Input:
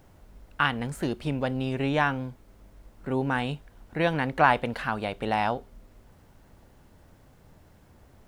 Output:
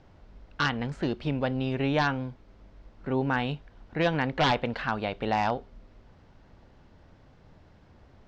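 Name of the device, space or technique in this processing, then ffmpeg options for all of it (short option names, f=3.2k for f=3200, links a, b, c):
synthesiser wavefolder: -af "aeval=exprs='0.158*(abs(mod(val(0)/0.158+3,4)-2)-1)':c=same,lowpass=f=5.3k:w=0.5412,lowpass=f=5.3k:w=1.3066"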